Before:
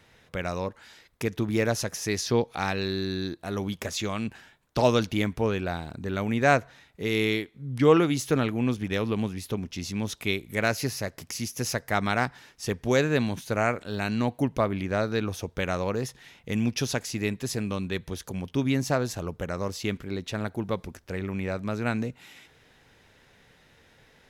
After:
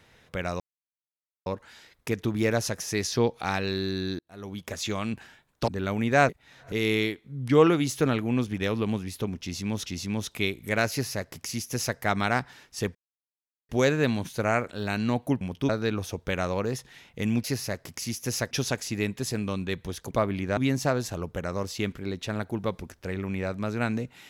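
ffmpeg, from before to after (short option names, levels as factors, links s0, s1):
-filter_complex "[0:a]asplit=14[s0][s1][s2][s3][s4][s5][s6][s7][s8][s9][s10][s11][s12][s13];[s0]atrim=end=0.6,asetpts=PTS-STARTPTS,afade=t=out:st=0.596:d=0.004:c=hsin,apad=pad_dur=0.86[s14];[s1]atrim=start=0.6:end=3.33,asetpts=PTS-STARTPTS,afade=t=in:d=0.004:c=hsin,afade=t=out:st=2.726:d=0.004:c=hsin[s15];[s2]atrim=start=3.33:end=4.822,asetpts=PTS-STARTPTS,afade=t=in:d=0.71[s16];[s3]atrim=start=5.978:end=6.592[s17];[s4]atrim=start=6.588:end=7.022,asetpts=PTS-STARTPTS,areverse[s18];[s5]atrim=start=7.018:end=10.162[s19];[s6]atrim=start=9.718:end=12.81,asetpts=PTS-STARTPTS,afade=t=out:st=3.088:d=0.004:c=hsin,apad=pad_dur=0.74[s20];[s7]atrim=start=12.81:end=14.532,asetpts=PTS-STARTPTS,afade=t=in:d=0.004:c=hsin[s21];[s8]atrim=start=18.338:end=18.622[s22];[s9]atrim=start=14.988:end=16.742[s23];[s10]atrim=start=10.768:end=11.842[s24];[s11]atrim=start=16.738:end=18.342[s25];[s12]atrim=start=14.528:end=14.992[s26];[s13]atrim=start=18.618[s27];[s14][s15][s16]concat=n=3:v=0:a=1[s28];[s28][s17]acrossfade=d=0.004:c1=hsin:c2=hsin[s29];[s29][s18]acrossfade=d=0.004:c1=hsin:c2=hsin[s30];[s30][s19]acrossfade=d=0.004:c1=hsin:c2=hsin[s31];[s20][s21]concat=n=2:v=0:a=1[s32];[s31][s32]acrossfade=d=0.004:c1=hsin:c2=hsin[s33];[s33][s22]acrossfade=d=0.004:c1=hsin:c2=hsin[s34];[s34][s23]acrossfade=d=0.004:c1=hsin:c2=hsin[s35];[s35][s24]acrossfade=d=0.004:c1=hsin:c2=hsin[s36];[s36][s25]acrossfade=d=0.004:c1=hsin:c2=hsin[s37];[s37][s26]acrossfade=d=0.004:c1=hsin:c2=hsin[s38];[s38][s27]acrossfade=d=0.004:c1=hsin:c2=hsin"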